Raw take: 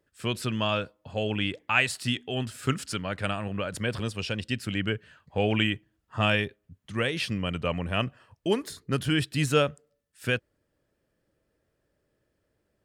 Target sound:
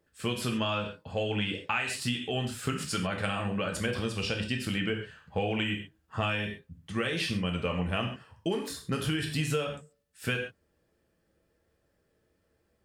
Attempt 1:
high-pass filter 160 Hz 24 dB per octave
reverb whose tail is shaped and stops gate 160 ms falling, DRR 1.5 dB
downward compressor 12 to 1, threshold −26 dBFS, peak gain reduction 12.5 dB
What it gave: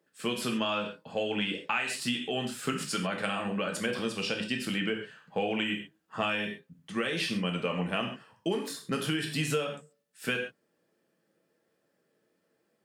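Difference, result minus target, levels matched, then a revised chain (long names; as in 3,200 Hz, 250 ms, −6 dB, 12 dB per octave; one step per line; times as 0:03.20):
125 Hz band −5.5 dB
reverb whose tail is shaped and stops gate 160 ms falling, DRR 1.5 dB
downward compressor 12 to 1, threshold −26 dBFS, peak gain reduction 12.5 dB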